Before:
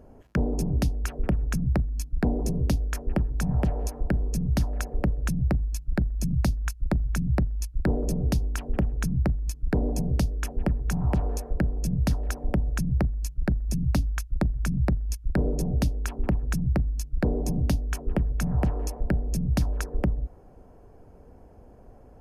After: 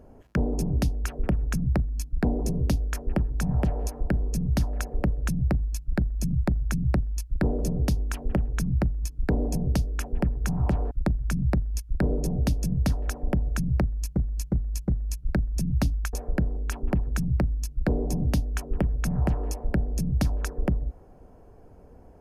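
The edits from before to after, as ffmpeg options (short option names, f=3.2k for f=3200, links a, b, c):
-filter_complex "[0:a]asplit=9[a][b][c][d][e][f][g][h][i];[a]atrim=end=6.432[j];[b]atrim=start=6.868:end=11.352[k];[c]atrim=start=14.258:end=15.932[l];[d]atrim=start=11.788:end=13.372[m];[e]atrim=start=13.008:end=13.372[n];[f]atrim=start=13.008:end=13.372[o];[g]atrim=start=13.008:end=14.262[p];[h]atrim=start=11.348:end=11.792[q];[i]atrim=start=15.928[r];[j][k]acrossfade=d=0.004:c1=hsin:c2=hsin[s];[s][l]acrossfade=d=0.004:c1=hsin:c2=hsin[t];[t][m]acrossfade=d=0.004:c1=hsin:c2=hsin[u];[u][n]acrossfade=d=0.004:c1=hsin:c2=hsin[v];[v][o]acrossfade=d=0.004:c1=hsin:c2=hsin[w];[w][p]acrossfade=d=0.004:c1=hsin:c2=hsin[x];[x][q]acrossfade=d=0.004:c1=hsin:c2=hsin[y];[y][r]acrossfade=d=0.004:c1=hsin:c2=hsin"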